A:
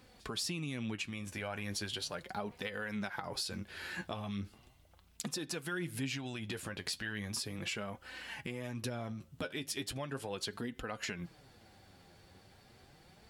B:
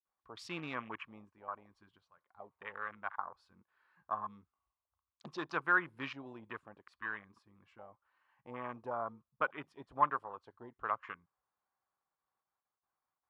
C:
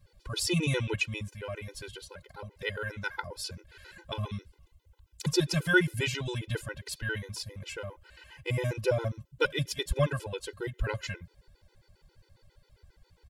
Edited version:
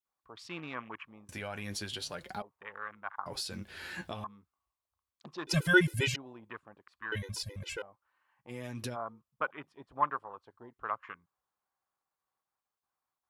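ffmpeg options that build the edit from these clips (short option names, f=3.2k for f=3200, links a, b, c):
-filter_complex "[0:a]asplit=3[a][b][c];[2:a]asplit=2[d][e];[1:a]asplit=6[f][g][h][i][j][k];[f]atrim=end=1.292[l];[a]atrim=start=1.288:end=2.422[m];[g]atrim=start=2.418:end=3.262[n];[b]atrim=start=3.258:end=4.242[o];[h]atrim=start=4.238:end=5.472[p];[d]atrim=start=5.468:end=6.162[q];[i]atrim=start=6.158:end=7.122[r];[e]atrim=start=7.118:end=7.822[s];[j]atrim=start=7.818:end=8.52[t];[c]atrim=start=8.48:end=8.97[u];[k]atrim=start=8.93[v];[l][m]acrossfade=d=0.004:c1=hsin:c2=hsin[w];[w][n]acrossfade=d=0.004:c1=hsin:c2=hsin[x];[x][o]acrossfade=d=0.004:c1=hsin:c2=hsin[y];[y][p]acrossfade=d=0.004:c1=hsin:c2=hsin[z];[z][q]acrossfade=d=0.004:c1=hsin:c2=hsin[aa];[aa][r]acrossfade=d=0.004:c1=hsin:c2=hsin[ab];[ab][s]acrossfade=d=0.004:c1=hsin:c2=hsin[ac];[ac][t]acrossfade=d=0.004:c1=hsin:c2=hsin[ad];[ad][u]acrossfade=d=0.04:c1=tri:c2=tri[ae];[ae][v]acrossfade=d=0.04:c1=tri:c2=tri"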